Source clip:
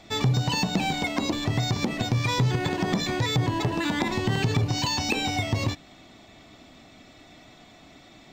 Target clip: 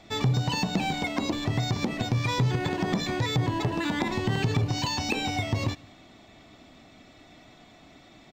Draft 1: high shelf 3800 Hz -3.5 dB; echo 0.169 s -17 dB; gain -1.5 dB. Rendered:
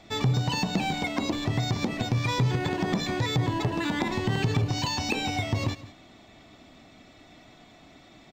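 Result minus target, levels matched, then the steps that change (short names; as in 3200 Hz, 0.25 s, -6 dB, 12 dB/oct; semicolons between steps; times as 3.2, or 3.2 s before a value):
echo-to-direct +9 dB
change: echo 0.169 s -26 dB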